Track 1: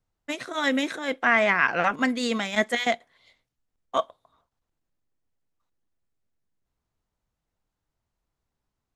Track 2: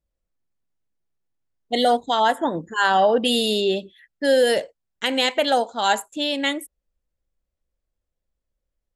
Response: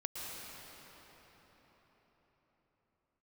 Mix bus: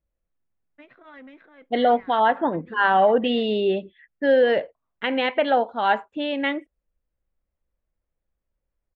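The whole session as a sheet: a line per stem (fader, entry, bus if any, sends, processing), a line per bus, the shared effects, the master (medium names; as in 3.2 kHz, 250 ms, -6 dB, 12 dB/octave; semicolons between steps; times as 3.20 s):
-11.0 dB, 0.50 s, no send, saturation -22 dBFS, distortion -9 dB; auto duck -9 dB, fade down 1.60 s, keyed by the second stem
0.0 dB, 0.00 s, no send, none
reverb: none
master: low-pass 2.6 kHz 24 dB/octave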